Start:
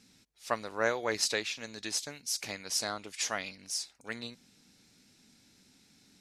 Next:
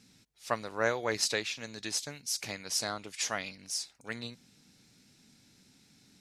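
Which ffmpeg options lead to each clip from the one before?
-af "equalizer=f=130:t=o:w=0.73:g=6"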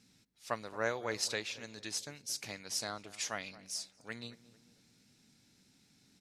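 -filter_complex "[0:a]asplit=2[a][b];[b]adelay=224,lowpass=f=1.1k:p=1,volume=-16dB,asplit=2[c][d];[d]adelay=224,lowpass=f=1.1k:p=1,volume=0.52,asplit=2[e][f];[f]adelay=224,lowpass=f=1.1k:p=1,volume=0.52,asplit=2[g][h];[h]adelay=224,lowpass=f=1.1k:p=1,volume=0.52,asplit=2[i][j];[j]adelay=224,lowpass=f=1.1k:p=1,volume=0.52[k];[a][c][e][g][i][k]amix=inputs=6:normalize=0,volume=-5dB"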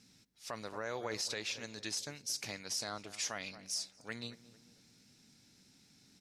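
-af "equalizer=f=5.4k:t=o:w=0.53:g=3.5,alimiter=level_in=4.5dB:limit=-24dB:level=0:latency=1:release=47,volume=-4.5dB,volume=1.5dB"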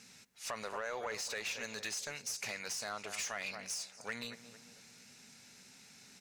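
-filter_complex "[0:a]acompressor=threshold=-41dB:ratio=6,asplit=2[a][b];[b]highpass=f=720:p=1,volume=15dB,asoftclip=type=tanh:threshold=-30dB[c];[a][c]amix=inputs=2:normalize=0,lowpass=f=7.9k:p=1,volume=-6dB,superequalizer=6b=0.398:13b=0.562:14b=0.562,volume=2dB"

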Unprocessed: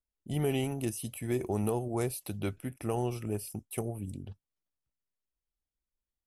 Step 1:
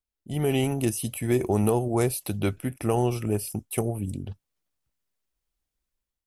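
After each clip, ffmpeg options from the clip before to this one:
-af "dynaudnorm=f=130:g=7:m=8dB"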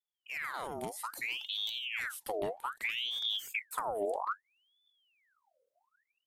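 -af "acompressor=threshold=-27dB:ratio=6,asubboost=boost=6:cutoff=140,aeval=exprs='val(0)*sin(2*PI*2000*n/s+2000*0.75/0.62*sin(2*PI*0.62*n/s))':c=same,volume=-6.5dB"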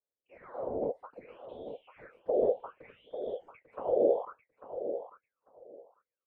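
-af "afftfilt=real='hypot(re,im)*cos(2*PI*random(0))':imag='hypot(re,im)*sin(2*PI*random(1))':win_size=512:overlap=0.75,lowpass=f=520:t=q:w=4.6,aecho=1:1:845|1690:0.316|0.0506,volume=6.5dB"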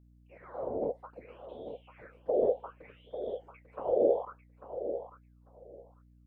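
-af "aeval=exprs='val(0)+0.00112*(sin(2*PI*60*n/s)+sin(2*PI*2*60*n/s)/2+sin(2*PI*3*60*n/s)/3+sin(2*PI*4*60*n/s)/4+sin(2*PI*5*60*n/s)/5)':c=same"

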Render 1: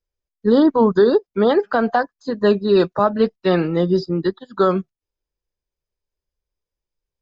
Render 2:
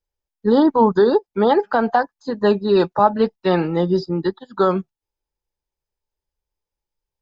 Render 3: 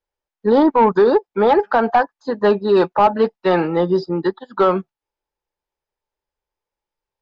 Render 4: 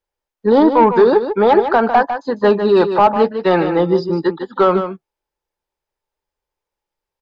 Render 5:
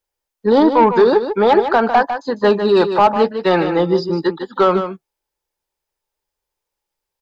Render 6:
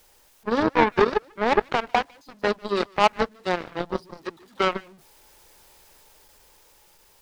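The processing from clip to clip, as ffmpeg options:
-af "equalizer=f=860:t=o:w=0.21:g=11.5,volume=-1dB"
-filter_complex "[0:a]asplit=2[a][b];[b]highpass=f=720:p=1,volume=15dB,asoftclip=type=tanh:threshold=-1.5dB[c];[a][c]amix=inputs=2:normalize=0,lowpass=f=1.4k:p=1,volume=-6dB,volume=-1dB"
-af "aecho=1:1:151:0.355,volume=2dB"
-af "highshelf=f=3.6k:g=8.5,volume=-1dB"
-af "aeval=exprs='val(0)+0.5*0.0501*sgn(val(0))':c=same,aeval=exprs='0.841*(cos(1*acos(clip(val(0)/0.841,-1,1)))-cos(1*PI/2))+0.299*(cos(3*acos(clip(val(0)/0.841,-1,1)))-cos(3*PI/2))':c=same,dynaudnorm=f=490:g=7:m=11.5dB,volume=-1dB"

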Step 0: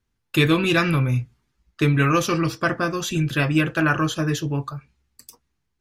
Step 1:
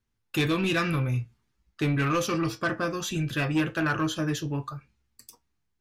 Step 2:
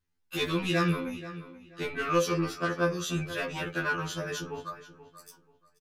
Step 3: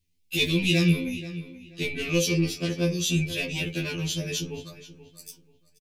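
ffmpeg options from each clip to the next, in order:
-af "flanger=delay=8.9:depth=1.5:regen=71:speed=0.78:shape=triangular,asoftclip=type=tanh:threshold=-18.5dB"
-filter_complex "[0:a]asplit=2[a][b];[b]adelay=482,lowpass=f=3.9k:p=1,volume=-14.5dB,asplit=2[c][d];[d]adelay=482,lowpass=f=3.9k:p=1,volume=0.26,asplit=2[e][f];[f]adelay=482,lowpass=f=3.9k:p=1,volume=0.26[g];[a][c][e][g]amix=inputs=4:normalize=0,afftfilt=real='re*2*eq(mod(b,4),0)':imag='im*2*eq(mod(b,4),0)':win_size=2048:overlap=0.75"
-af "firequalizer=gain_entry='entry(160,0);entry(1300,-27);entry(2300,1)':delay=0.05:min_phase=1,volume=7.5dB"

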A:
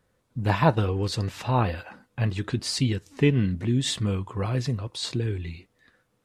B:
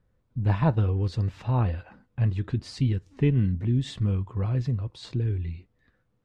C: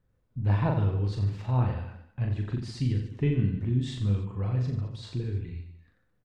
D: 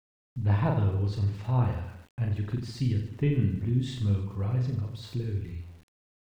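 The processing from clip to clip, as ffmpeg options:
-af "aemphasis=mode=reproduction:type=bsi,volume=-7.5dB"
-af "aecho=1:1:40|88|145.6|214.7|297.7:0.631|0.398|0.251|0.158|0.1,volume=-4.5dB"
-af "aeval=exprs='val(0)*gte(abs(val(0)),0.00237)':c=same"

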